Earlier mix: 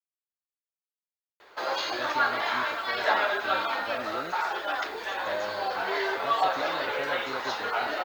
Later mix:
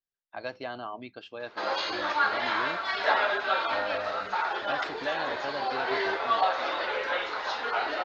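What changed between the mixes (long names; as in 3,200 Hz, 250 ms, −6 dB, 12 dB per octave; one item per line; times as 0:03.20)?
speech: entry −1.55 s
master: add low-pass filter 5,700 Hz 24 dB per octave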